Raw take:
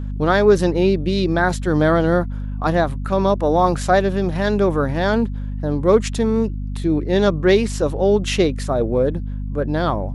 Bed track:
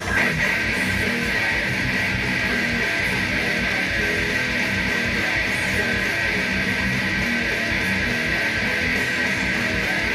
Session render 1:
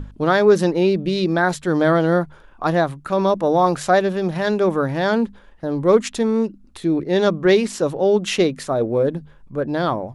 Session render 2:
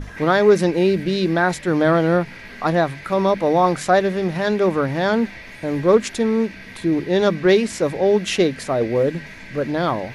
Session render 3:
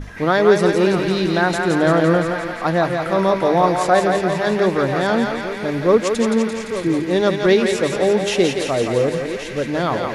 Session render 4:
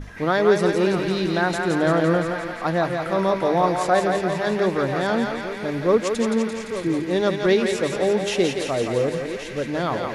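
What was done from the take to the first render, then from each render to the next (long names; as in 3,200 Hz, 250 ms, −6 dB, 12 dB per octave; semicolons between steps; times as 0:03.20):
mains-hum notches 50/100/150/200/250 Hz
mix in bed track −17 dB
delay that plays each chunk backwards 634 ms, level −11 dB; feedback echo with a high-pass in the loop 171 ms, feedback 67%, high-pass 480 Hz, level −4 dB
level −4 dB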